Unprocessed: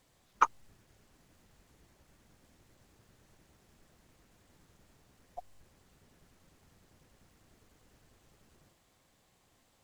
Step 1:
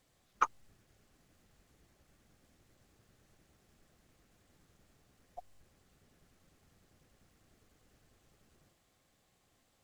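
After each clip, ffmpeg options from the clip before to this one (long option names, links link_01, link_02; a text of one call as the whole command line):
ffmpeg -i in.wav -af "bandreject=frequency=950:width=10,volume=-3.5dB" out.wav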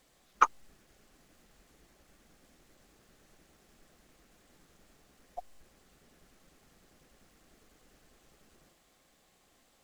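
ffmpeg -i in.wav -af "equalizer=frequency=100:width_type=o:width=0.85:gain=-13,volume=6.5dB" out.wav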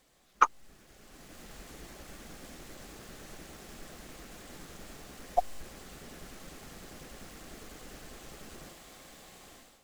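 ffmpeg -i in.wav -af "dynaudnorm=framelen=500:gausssize=3:maxgain=15.5dB" out.wav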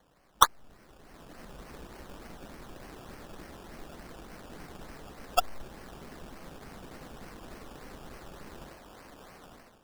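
ffmpeg -i in.wav -af "acrusher=samples=17:mix=1:aa=0.000001:lfo=1:lforange=10.2:lforate=3.4,volume=1.5dB" out.wav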